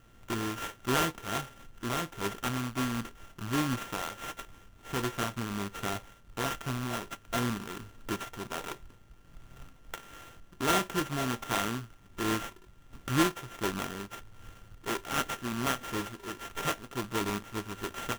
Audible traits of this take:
a buzz of ramps at a fixed pitch in blocks of 32 samples
tremolo triangle 1.4 Hz, depth 45%
aliases and images of a low sample rate 4,600 Hz, jitter 20%

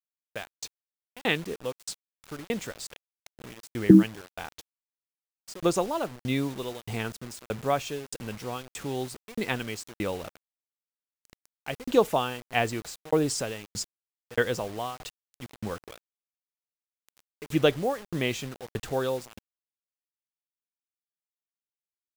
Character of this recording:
tremolo saw down 1.6 Hz, depth 100%
a quantiser's noise floor 8 bits, dither none

